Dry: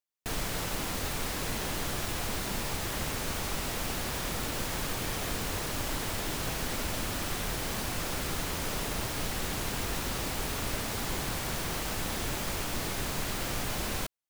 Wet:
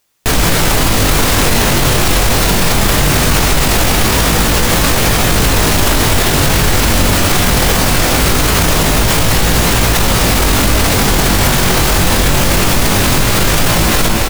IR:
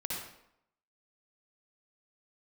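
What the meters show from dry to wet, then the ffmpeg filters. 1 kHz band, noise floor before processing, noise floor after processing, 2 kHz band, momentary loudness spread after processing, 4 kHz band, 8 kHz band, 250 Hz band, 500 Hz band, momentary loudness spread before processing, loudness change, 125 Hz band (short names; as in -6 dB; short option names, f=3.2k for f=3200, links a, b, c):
+21.5 dB, -35 dBFS, -12 dBFS, +21.5 dB, 1 LU, +21.5 dB, +21.0 dB, +22.5 dB, +22.0 dB, 0 LU, +21.5 dB, +24.0 dB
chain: -filter_complex "[0:a]asplit=2[a][b];[b]aecho=0:1:268:0.316[c];[a][c]amix=inputs=2:normalize=0,flanger=delay=18:depth=3.7:speed=0.21,asplit=2[d][e];[1:a]atrim=start_sample=2205,lowshelf=f=220:g=10.5[f];[e][f]afir=irnorm=-1:irlink=0,volume=-12.5dB[g];[d][g]amix=inputs=2:normalize=0,alimiter=level_in=32dB:limit=-1dB:release=50:level=0:latency=1,volume=-1dB"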